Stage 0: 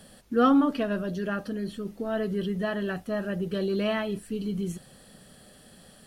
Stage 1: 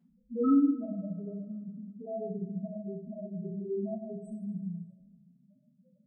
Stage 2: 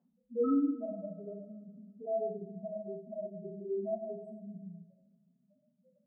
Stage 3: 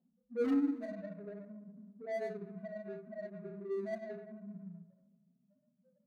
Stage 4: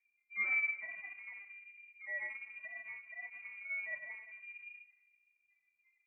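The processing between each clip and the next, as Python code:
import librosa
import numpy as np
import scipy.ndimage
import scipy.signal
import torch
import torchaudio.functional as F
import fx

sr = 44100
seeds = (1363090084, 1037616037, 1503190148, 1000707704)

y1 = fx.cheby_harmonics(x, sr, harmonics=(2,), levels_db=(-18,), full_scale_db=-10.5)
y1 = fx.spec_topn(y1, sr, count=1)
y1 = fx.rev_double_slope(y1, sr, seeds[0], early_s=0.52, late_s=1.8, knee_db=-19, drr_db=-10.0)
y1 = y1 * 10.0 ** (-8.5 / 20.0)
y2 = fx.bandpass_q(y1, sr, hz=640.0, q=1.6)
y2 = y2 * 10.0 ** (4.5 / 20.0)
y3 = scipy.signal.medfilt(y2, 41)
y3 = fx.env_lowpass(y3, sr, base_hz=840.0, full_db=-32.0)
y3 = y3 * 10.0 ** (-1.5 / 20.0)
y4 = scipy.signal.sosfilt(scipy.signal.butter(2, 120.0, 'highpass', fs=sr, output='sos'), y3)
y4 = fx.freq_invert(y4, sr, carrier_hz=2600)
y4 = y4 * 10.0 ** (-3.0 / 20.0)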